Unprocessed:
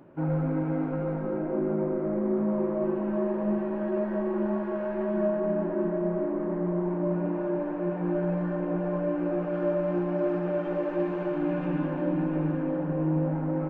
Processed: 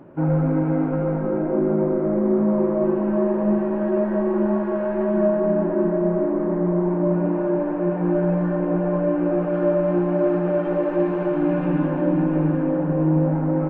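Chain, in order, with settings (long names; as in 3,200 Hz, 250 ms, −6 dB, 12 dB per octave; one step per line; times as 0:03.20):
high-shelf EQ 2,800 Hz −8.5 dB
level +7.5 dB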